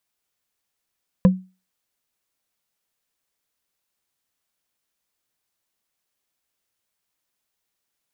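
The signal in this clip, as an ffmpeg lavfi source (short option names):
-f lavfi -i "aevalsrc='0.473*pow(10,-3*t/0.3)*sin(2*PI*186*t)+0.2*pow(10,-3*t/0.089)*sin(2*PI*512.8*t)+0.0841*pow(10,-3*t/0.04)*sin(2*PI*1005.1*t)+0.0355*pow(10,-3*t/0.022)*sin(2*PI*1661.5*t)+0.015*pow(10,-3*t/0.013)*sin(2*PI*2481.2*t)':d=0.45:s=44100"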